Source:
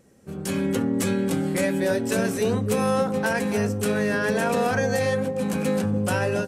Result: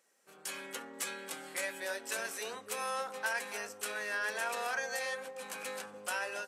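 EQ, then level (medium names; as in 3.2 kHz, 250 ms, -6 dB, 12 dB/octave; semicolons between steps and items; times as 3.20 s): high-pass 970 Hz 12 dB/octave; -6.5 dB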